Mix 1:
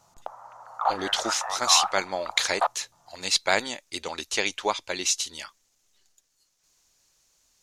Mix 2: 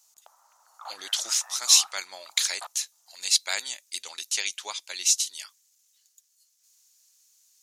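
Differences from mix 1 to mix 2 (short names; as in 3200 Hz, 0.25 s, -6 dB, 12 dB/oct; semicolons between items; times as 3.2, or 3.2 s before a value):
speech +5.0 dB; master: add differentiator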